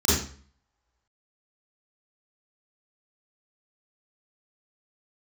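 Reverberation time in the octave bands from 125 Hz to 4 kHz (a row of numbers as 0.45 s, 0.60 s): 0.55 s, 0.55 s, 0.45 s, 0.45 s, 0.45 s, 0.40 s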